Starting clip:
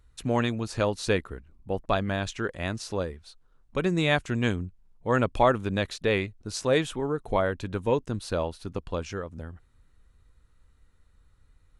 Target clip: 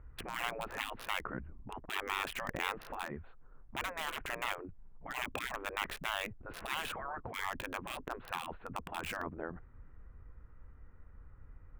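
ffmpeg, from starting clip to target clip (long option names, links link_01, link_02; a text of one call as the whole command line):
ffmpeg -i in.wav -filter_complex "[0:a]afftfilt=real='re*lt(hypot(re,im),0.0447)':imag='im*lt(hypot(re,im),0.0447)':win_size=1024:overlap=0.75,lowpass=frequency=2800:width=0.5412,lowpass=frequency=2800:width=1.3066,acrossover=split=2100[link_01][link_02];[link_02]acrusher=bits=7:mix=0:aa=0.000001[link_03];[link_01][link_03]amix=inputs=2:normalize=0,volume=6.5dB" out.wav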